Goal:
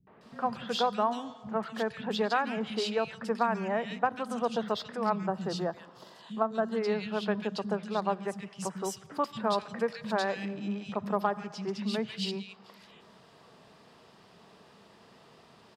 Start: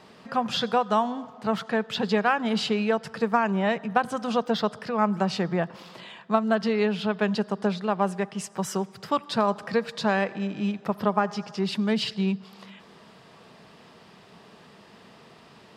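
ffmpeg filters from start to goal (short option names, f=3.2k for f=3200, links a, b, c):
-filter_complex "[0:a]asettb=1/sr,asplit=3[a][b][c];[a]atrim=end=5.094[d];[b]atrim=start=5.09:end=6.69,asetpts=PTS-STARTPTS,afade=t=in:d=0.004:c=qsin,afade=t=out:st=1.596:d=0.004:c=qsin,equalizer=f=2.3k:w=2.9:g=-12.5[e];[c]atrim=start=6.686[f];[d][e]acrossfade=d=0.004:c1=hsin:c2=qsin[g];[g][f]acrossfade=d=0.004:c1=qsin:c2=hsin,acrossover=split=200|2200[h][i][j];[i]adelay=70[k];[j]adelay=210[l];[h][k][l]amix=inputs=3:normalize=0,volume=-4.5dB"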